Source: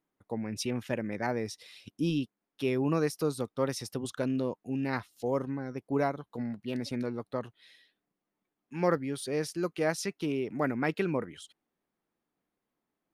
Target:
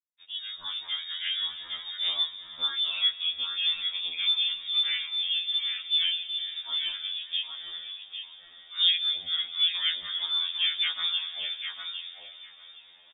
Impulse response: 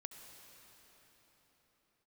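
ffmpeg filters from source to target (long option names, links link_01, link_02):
-filter_complex "[0:a]asettb=1/sr,asplit=3[link_01][link_02][link_03];[link_01]atrim=end=3.834[link_04];[link_02]atrim=start=3.83:end=4.92,asetpts=PTS-STARTPTS,afade=type=in:duration=0.004:curve=qsin,afade=type=out:start_time=1.086:duration=0.004:curve=qsin,equalizer=frequency=1400:width_type=o:width=0.7:gain=9.5[link_05];[link_03]atrim=start=4.916[link_06];[link_04][link_05]acrossfade=duration=0.004:curve1=hsin:curve2=qsin[link_07];[link_07][link_06]acrossfade=duration=0.004:curve1=qsin:curve2=hsin,asplit=2[link_08][link_09];[link_09]acompressor=threshold=-40dB:ratio=16,volume=0.5dB[link_10];[link_08][link_10]amix=inputs=2:normalize=0,aecho=1:1:805|1610|2415:0.562|0.0956|0.0163,flanger=delay=18:depth=7.8:speed=1.1,asettb=1/sr,asplit=3[link_11][link_12][link_13];[link_11]atrim=end=7.374[link_14];[link_12]atrim=start=7.37:end=8.78,asetpts=PTS-STARTPTS,afade=type=in:duration=0.004:curve=qsin,afade=type=out:start_time=1.406:duration=0.004:curve=qsin,aeval=exprs='val(0)+0.002*(sin(2*PI*60*n/s)+sin(2*PI*2*60*n/s)/2+sin(2*PI*3*60*n/s)/3+sin(2*PI*4*60*n/s)/4+sin(2*PI*5*60*n/s)/5)':channel_layout=same[link_15];[link_13]atrim=start=8.776[link_16];[link_14][link_15]acrossfade=duration=0.004:curve1=hsin:curve2=qsin[link_17];[link_17][link_16]acrossfade=duration=0.004:curve1=qsin:curve2=hsin,asplit=2[link_18][link_19];[1:a]atrim=start_sample=2205,highshelf=frequency=4300:gain=-10.5[link_20];[link_19][link_20]afir=irnorm=-1:irlink=0,volume=1dB[link_21];[link_18][link_21]amix=inputs=2:normalize=0,acrusher=bits=8:mix=0:aa=0.000001,lowpass=frequency=3200:width_type=q:width=0.5098,lowpass=frequency=3200:width_type=q:width=0.6013,lowpass=frequency=3200:width_type=q:width=0.9,lowpass=frequency=3200:width_type=q:width=2.563,afreqshift=-3800,afftfilt=real='re*2*eq(mod(b,4),0)':imag='im*2*eq(mod(b,4),0)':win_size=2048:overlap=0.75"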